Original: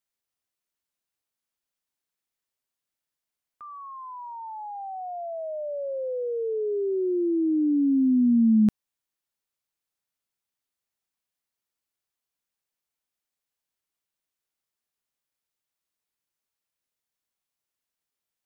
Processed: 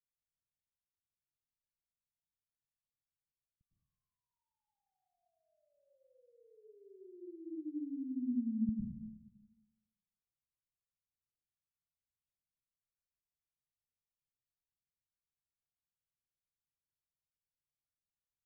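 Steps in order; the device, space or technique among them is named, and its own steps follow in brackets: club heard from the street (limiter -19 dBFS, peak gain reduction 4.5 dB; LPF 160 Hz 24 dB/oct; reverb RT60 1.1 s, pre-delay 98 ms, DRR -2 dB); gain -3.5 dB

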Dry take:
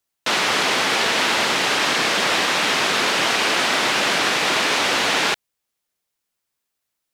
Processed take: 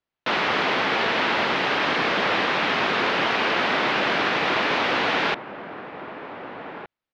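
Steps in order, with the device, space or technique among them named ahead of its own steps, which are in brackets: shout across a valley (air absorption 290 m; outdoor echo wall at 260 m, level -10 dB)

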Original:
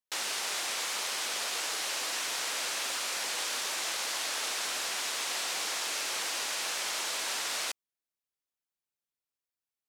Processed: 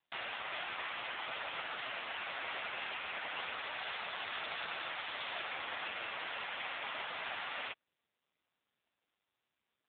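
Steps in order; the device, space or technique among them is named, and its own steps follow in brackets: 3.8–5.4 dynamic EQ 3700 Hz, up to +4 dB, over -53 dBFS, Q 7.2; telephone (BPF 300–3300 Hz; gain +2 dB; AMR-NB 5.9 kbps 8000 Hz)

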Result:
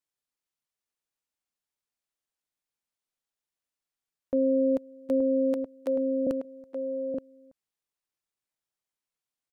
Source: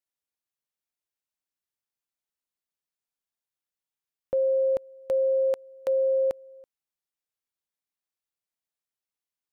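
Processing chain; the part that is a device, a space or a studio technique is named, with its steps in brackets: octave pedal (harmoniser -12 st -1 dB); 5.57–6.27 HPF 310 Hz 24 dB/oct; outdoor echo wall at 150 m, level -6 dB; gain -3 dB

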